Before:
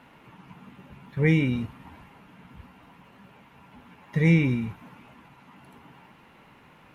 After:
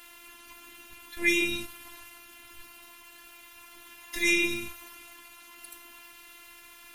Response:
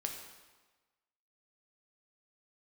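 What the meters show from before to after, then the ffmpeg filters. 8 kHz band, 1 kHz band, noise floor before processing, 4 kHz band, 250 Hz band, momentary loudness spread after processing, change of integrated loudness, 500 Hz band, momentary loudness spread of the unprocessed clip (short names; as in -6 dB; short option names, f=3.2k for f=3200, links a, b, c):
n/a, -2.5 dB, -55 dBFS, +10.0 dB, -9.0 dB, 22 LU, -2.5 dB, -4.5 dB, 17 LU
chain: -af "highshelf=f=2.7k:g=9,crystalizer=i=9.5:c=0,lowshelf=f=120:g=10,afftfilt=real='hypot(re,im)*cos(PI*b)':imag='0':win_size=512:overlap=0.75,volume=-5dB"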